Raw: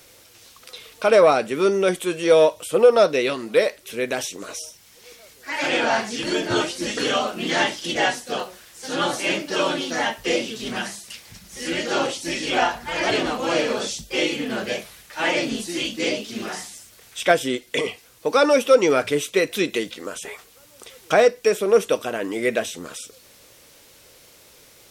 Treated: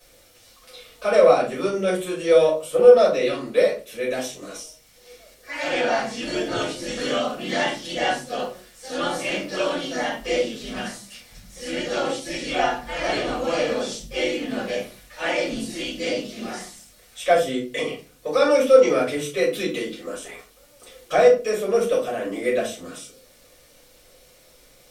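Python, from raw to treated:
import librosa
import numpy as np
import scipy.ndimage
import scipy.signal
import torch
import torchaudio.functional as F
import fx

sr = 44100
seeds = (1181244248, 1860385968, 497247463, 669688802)

y = fx.room_shoebox(x, sr, seeds[0], volume_m3=160.0, walls='furnished', distance_m=5.6)
y = y * 10.0 ** (-13.5 / 20.0)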